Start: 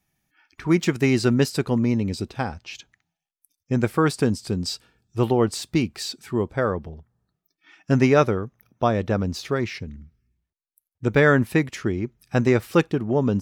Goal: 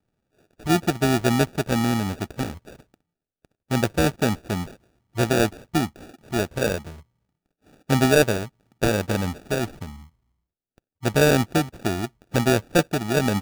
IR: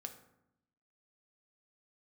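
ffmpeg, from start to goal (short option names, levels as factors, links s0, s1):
-filter_complex "[0:a]acrossover=split=1200[s0][s1];[s0]crystalizer=i=6.5:c=0[s2];[s1]acompressor=threshold=0.01:ratio=6[s3];[s2][s3]amix=inputs=2:normalize=0,acrusher=samples=42:mix=1:aa=0.000001,tremolo=f=79:d=0.261"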